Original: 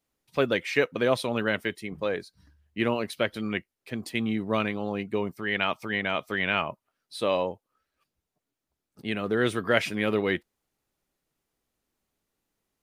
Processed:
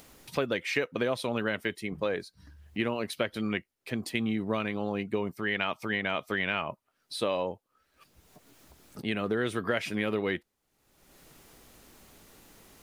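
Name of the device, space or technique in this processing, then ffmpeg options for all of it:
upward and downward compression: -af "acompressor=mode=upward:threshold=-36dB:ratio=2.5,acompressor=threshold=-26dB:ratio=6,volume=1dB"

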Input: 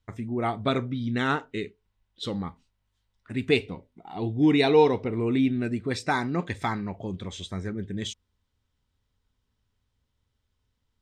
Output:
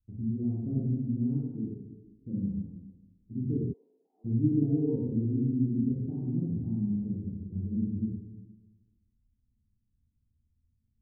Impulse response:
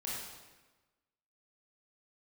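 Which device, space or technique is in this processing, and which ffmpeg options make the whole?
next room: -filter_complex "[0:a]lowpass=f=270:w=0.5412,lowpass=f=270:w=1.3066[a];[1:a]atrim=start_sample=2205[b];[a][b]afir=irnorm=-1:irlink=0,asplit=3[c][d][e];[c]afade=t=out:st=3.72:d=0.02[f];[d]highpass=f=660:w=0.5412,highpass=f=660:w=1.3066,afade=t=in:st=3.72:d=0.02,afade=t=out:st=4.24:d=0.02[g];[e]afade=t=in:st=4.24:d=0.02[h];[f][g][h]amix=inputs=3:normalize=0"

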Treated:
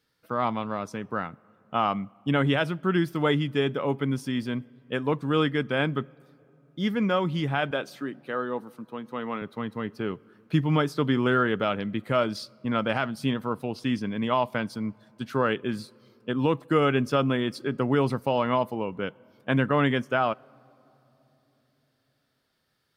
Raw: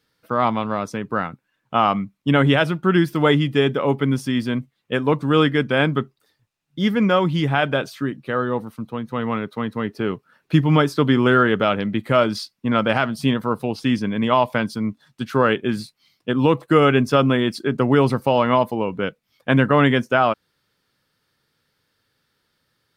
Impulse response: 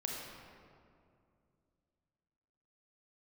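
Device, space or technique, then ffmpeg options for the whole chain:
ducked reverb: -filter_complex "[0:a]asettb=1/sr,asplit=3[a][b][c];[a]atrim=end=7.714[d];[b]atrim=start=7.71:end=9.42,asetpts=PTS-STARTPTS,afade=t=in:d=0.004:c=qsin,afade=t=out:st=1.706:d=0.004:c=qsin,highpass=220[e];[c]atrim=start=9.416[f];[d][e]acrossfade=d=0.004:c1=hsin:c2=qsin[g];[g][f]acrossfade=d=0.004:c1=qsin:c2=hsin,asplit=3[h][i][j];[1:a]atrim=start_sample=2205[k];[i][k]afir=irnorm=-1:irlink=0[l];[j]apad=whole_len=1012839[m];[l][m]sidechaincompress=threshold=-42dB:ratio=3:attack=5.4:release=1350,volume=-5.5dB[n];[h][n]amix=inputs=2:normalize=0,volume=-7.5dB"

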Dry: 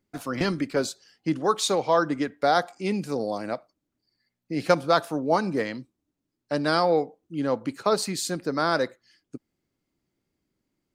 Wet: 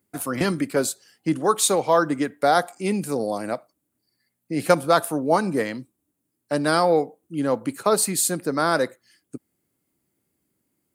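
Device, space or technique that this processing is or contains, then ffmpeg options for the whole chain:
budget condenser microphone: -af "highpass=72,highshelf=f=7.3k:t=q:w=1.5:g=10.5,volume=3dB"

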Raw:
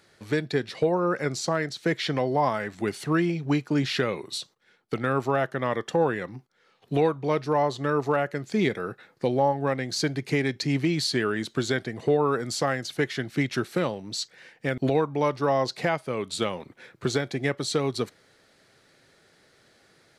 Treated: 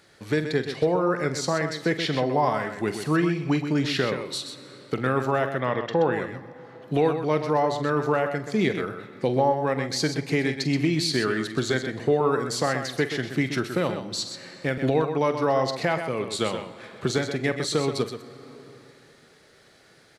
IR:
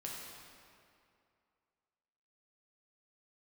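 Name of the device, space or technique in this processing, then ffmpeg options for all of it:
compressed reverb return: -filter_complex "[0:a]asettb=1/sr,asplit=3[a][b][c];[a]atrim=end=5.584[d];[b]atrim=start=5.58:end=6.13,asetpts=PTS-STARTPTS,afade=t=in:d=0.004:c=qsin,afade=t=out:st=0.546:d=0.004:c=qsin,lowpass=f=5k:w=0.5412,lowpass=f=5k:w=1.3066[e];[c]atrim=start=6.126[f];[d][e]acrossfade=d=0.004:c1=hsin:c2=qsin[g];[g][f]acrossfade=d=0.004:c1=qsin:c2=hsin,aecho=1:1:46|127:0.224|0.376,asplit=2[h][i];[1:a]atrim=start_sample=2205[j];[i][j]afir=irnorm=-1:irlink=0,acompressor=threshold=-37dB:ratio=6,volume=-3dB[k];[h][k]amix=inputs=2:normalize=0"

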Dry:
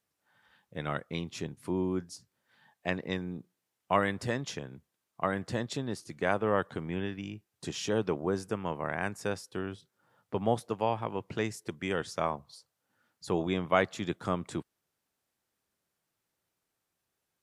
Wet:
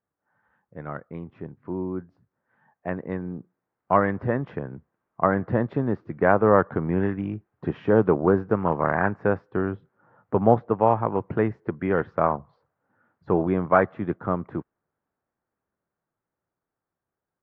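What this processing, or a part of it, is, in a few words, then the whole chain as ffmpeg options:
action camera in a waterproof case: -af "lowpass=f=1.6k:w=0.5412,lowpass=f=1.6k:w=1.3066,dynaudnorm=f=370:g=21:m=16dB" -ar 48000 -c:a aac -b:a 64k

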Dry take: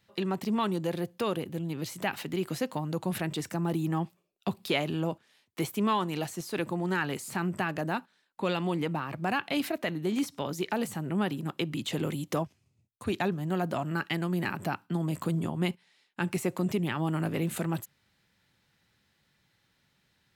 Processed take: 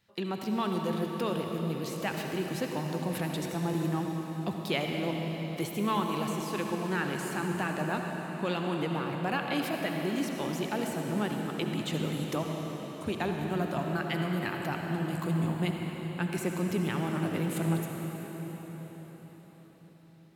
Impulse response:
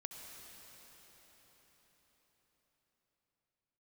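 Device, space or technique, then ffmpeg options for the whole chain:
cathedral: -filter_complex "[1:a]atrim=start_sample=2205[a];[0:a][a]afir=irnorm=-1:irlink=0,volume=2.5dB"

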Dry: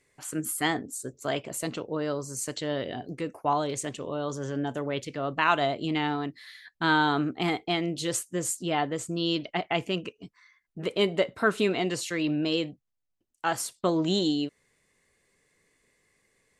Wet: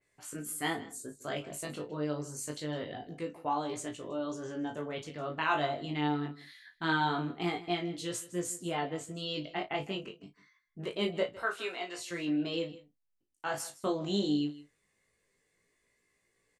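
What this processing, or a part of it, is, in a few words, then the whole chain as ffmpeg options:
double-tracked vocal: -filter_complex "[0:a]asettb=1/sr,asplit=3[a][b][c];[a]atrim=end=11.424[d];[b]atrim=start=11.42:end=11.99,asetpts=PTS-STARTPTS,afade=t=in:d=0.004:c=qsin,afade=t=out:st=0.566:d=0.004:c=qsin,highpass=640[e];[c]atrim=start=11.986[f];[d][e]acrossfade=d=0.004:c1=hsin:c2=qsin[g];[g][f]acrossfade=d=0.004:c1=qsin:c2=hsin,asplit=2[h][i];[i]adelay=34,volume=-10.5dB[j];[h][j]amix=inputs=2:normalize=0,flanger=delay=17:depth=3.3:speed=0.25,asplit=2[k][l];[l]adelay=20,volume=-11dB[m];[k][m]amix=inputs=2:normalize=0,aecho=1:1:157:0.126,adynamicequalizer=threshold=0.00708:dfrequency=3200:dqfactor=0.7:tfrequency=3200:tqfactor=0.7:attack=5:release=100:ratio=0.375:range=1.5:mode=cutabove:tftype=highshelf,volume=-4dB"

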